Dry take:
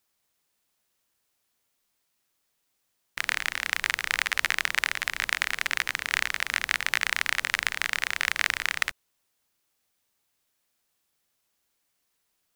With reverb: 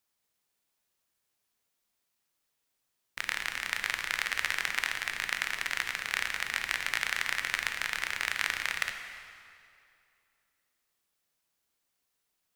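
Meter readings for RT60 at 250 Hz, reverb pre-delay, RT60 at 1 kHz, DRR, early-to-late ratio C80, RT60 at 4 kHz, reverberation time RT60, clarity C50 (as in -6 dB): 2.5 s, 12 ms, 2.5 s, 5.5 dB, 7.5 dB, 2.0 s, 2.5 s, 6.5 dB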